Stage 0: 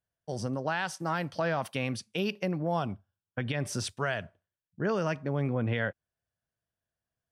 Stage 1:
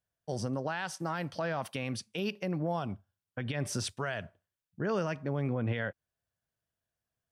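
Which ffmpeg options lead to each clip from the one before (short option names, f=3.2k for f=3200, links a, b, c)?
-af "alimiter=limit=-22.5dB:level=0:latency=1:release=131"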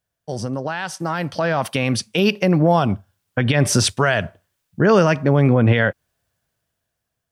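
-af "dynaudnorm=f=450:g=7:m=9.5dB,volume=8dB"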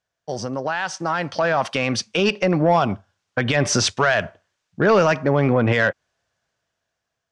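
-filter_complex "[0:a]asplit=2[a][b];[b]highpass=f=720:p=1,volume=11dB,asoftclip=type=tanh:threshold=-4.5dB[c];[a][c]amix=inputs=2:normalize=0,lowpass=f=1.9k:p=1,volume=-6dB,lowpass=f=6.5k:t=q:w=2.1,volume=-1.5dB"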